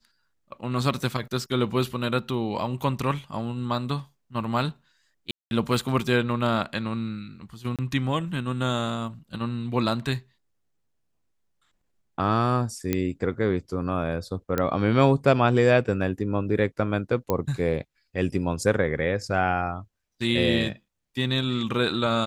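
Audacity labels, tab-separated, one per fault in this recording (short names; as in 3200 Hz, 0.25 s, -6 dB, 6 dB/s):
5.310000	5.510000	gap 0.201 s
7.760000	7.790000	gap 27 ms
12.930000	12.930000	pop -10 dBFS
14.580000	14.580000	pop -11 dBFS
17.300000	17.300000	pop -11 dBFS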